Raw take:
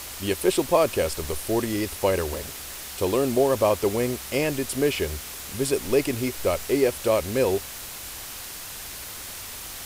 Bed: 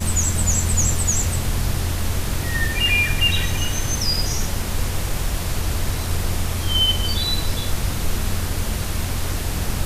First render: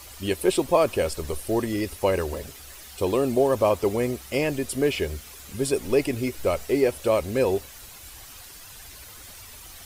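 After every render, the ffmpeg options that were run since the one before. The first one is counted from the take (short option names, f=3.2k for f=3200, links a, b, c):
-af "afftdn=nr=10:nf=-38"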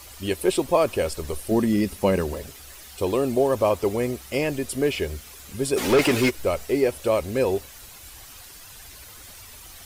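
-filter_complex "[0:a]asettb=1/sr,asplit=3[a][b][c];[a]atrim=end=1.514[d];[b]atrim=start=1.51:end=2.33,asetpts=PTS-STARTPTS,afade=t=in:d=0.004:c=qsin,afade=t=out:st=0.816:d=0.004:c=qsin,equalizer=f=200:w=2:g=12.5[e];[c]atrim=start=2.326[f];[d][e]acrossfade=d=0.004:c1=hsin:c2=qsin[g];[g][f]acrossfade=d=0.004:c1=qsin:c2=hsin,asplit=3[h][i][j];[h]afade=t=out:st=5.76:d=0.02[k];[i]asplit=2[l][m];[m]highpass=f=720:p=1,volume=26dB,asoftclip=type=tanh:threshold=-10dB[n];[l][n]amix=inputs=2:normalize=0,lowpass=f=3.7k:p=1,volume=-6dB,afade=t=in:st=5.76:d=0.02,afade=t=out:st=6.29:d=0.02[o];[j]afade=t=in:st=6.29:d=0.02[p];[k][o][p]amix=inputs=3:normalize=0"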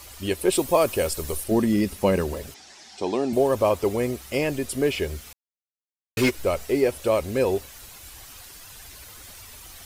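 -filter_complex "[0:a]asettb=1/sr,asplit=3[a][b][c];[a]atrim=end=0.524[d];[b]atrim=start=0.52:end=1.44,asetpts=PTS-STARTPTS,afade=t=in:d=0.004:c=qsin,afade=t=out:st=0.916:d=0.004:c=qsin,highshelf=f=7.6k:g=10.5[e];[c]atrim=start=1.436[f];[d][e]acrossfade=d=0.004:c1=hsin:c2=qsin[g];[g][f]acrossfade=d=0.004:c1=qsin:c2=hsin,asettb=1/sr,asplit=3[h][i][j];[h]atrim=end=2.544[k];[i]atrim=start=2.54:end=3.33,asetpts=PTS-STARTPTS,afade=t=in:d=0.004:c=qsin,afade=t=out:st=0.786:d=0.004:c=qsin,highpass=210,equalizer=f=220:t=q:w=4:g=5,equalizer=f=510:t=q:w=4:g=-8,equalizer=f=790:t=q:w=4:g=7,equalizer=f=1.2k:t=q:w=4:g=-7,equalizer=f=2.8k:t=q:w=4:g=-4,equalizer=f=5.3k:t=q:w=4:g=4,lowpass=f=6.9k:w=0.5412,lowpass=f=6.9k:w=1.3066[l];[j]atrim=start=3.326[m];[k][l]acrossfade=d=0.004:c1=hsin:c2=qsin[n];[n][m]acrossfade=d=0.004:c1=qsin:c2=hsin,asplit=3[o][p][q];[o]atrim=end=5.33,asetpts=PTS-STARTPTS,afade=t=out:st=5.326:d=0.004:c=hsin[r];[p]atrim=start=5.33:end=6.17,asetpts=PTS-STARTPTS,volume=0[s];[q]atrim=start=6.17,asetpts=PTS-STARTPTS,afade=t=in:d=0.004:c=hsin[t];[r][s][t]concat=n=3:v=0:a=1"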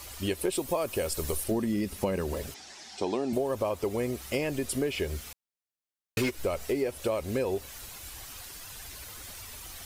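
-af "acompressor=threshold=-26dB:ratio=6"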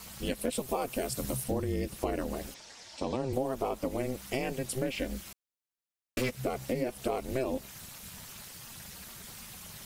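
-af "aeval=exprs='val(0)*sin(2*PI*130*n/s)':c=same"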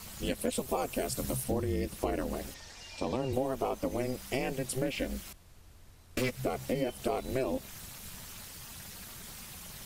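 -filter_complex "[1:a]volume=-33.5dB[a];[0:a][a]amix=inputs=2:normalize=0"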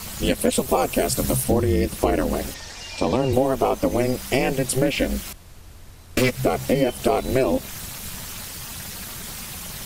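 -af "volume=12dB"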